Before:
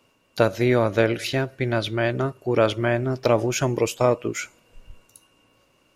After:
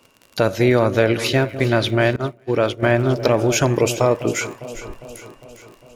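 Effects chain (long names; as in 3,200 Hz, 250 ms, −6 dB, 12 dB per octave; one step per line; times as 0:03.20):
brickwall limiter −11 dBFS, peak gain reduction 6 dB
delay that swaps between a low-pass and a high-pass 202 ms, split 810 Hz, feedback 76%, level −12 dB
surface crackle 44 per second −38 dBFS
0:02.16–0:02.83: downward expander −17 dBFS
level +6 dB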